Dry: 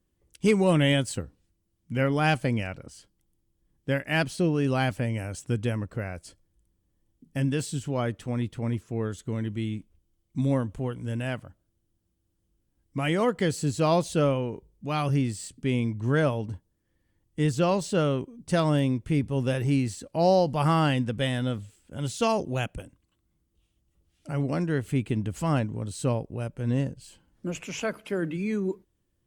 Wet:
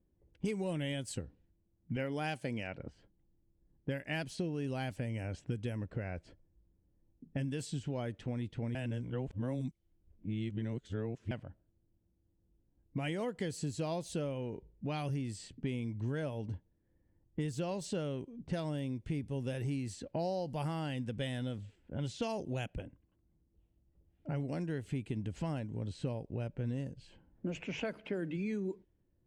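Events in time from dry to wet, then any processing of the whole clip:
1.96–2.80 s: high-pass 200 Hz 6 dB/octave
8.75–11.31 s: reverse
whole clip: level-controlled noise filter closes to 1.1 kHz, open at -22 dBFS; peaking EQ 1.2 kHz -8.5 dB 0.47 oct; compression 6:1, threshold -34 dBFS

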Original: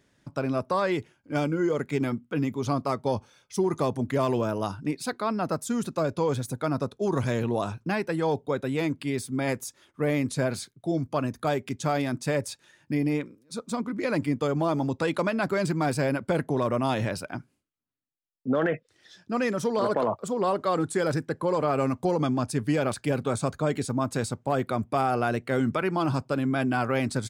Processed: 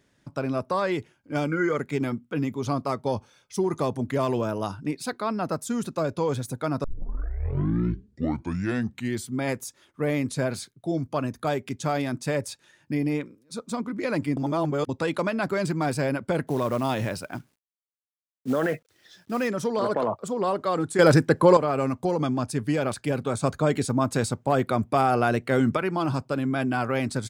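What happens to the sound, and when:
1.48–1.77 s: time-frequency box 1.1–2.4 kHz +10 dB
6.84 s: tape start 2.56 s
14.37–14.89 s: reverse
16.47–19.48 s: companded quantiser 6-bit
20.99–21.57 s: gain +10 dB
23.44–25.77 s: gain +3.5 dB

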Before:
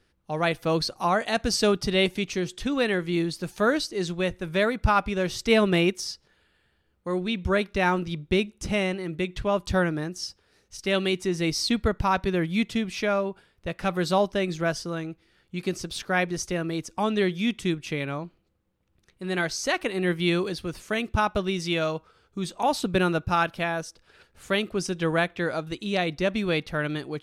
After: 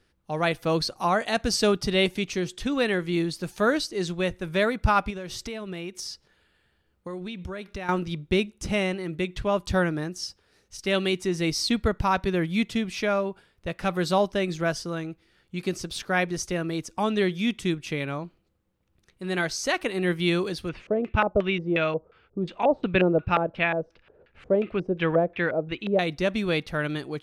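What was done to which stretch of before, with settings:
5.10–7.89 s: compression 8:1, threshold -31 dBFS
20.69–25.99 s: LFO low-pass square 2.8 Hz 540–2500 Hz

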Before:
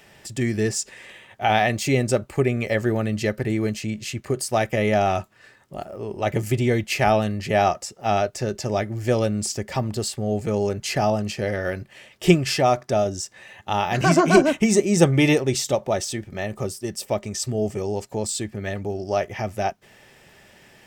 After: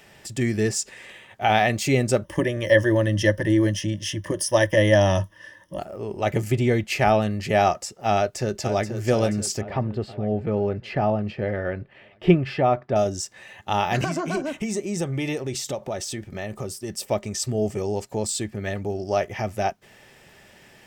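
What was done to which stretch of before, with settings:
2.24–5.79 s: rippled EQ curve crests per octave 1.2, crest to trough 17 dB
6.44–7.32 s: treble shelf 4.3 kHz -4.5 dB
8.16–8.89 s: echo throw 480 ms, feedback 60%, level -8.5 dB
9.61–12.96 s: distance through air 410 m
14.04–16.90 s: compression 2.5:1, threshold -28 dBFS

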